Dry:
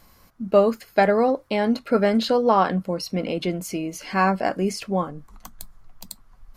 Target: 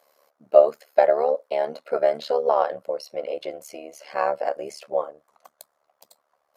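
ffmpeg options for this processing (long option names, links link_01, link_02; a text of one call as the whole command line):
ffmpeg -i in.wav -af "highpass=frequency=570:width_type=q:width=4.9,tremolo=f=73:d=0.857,volume=-5.5dB" out.wav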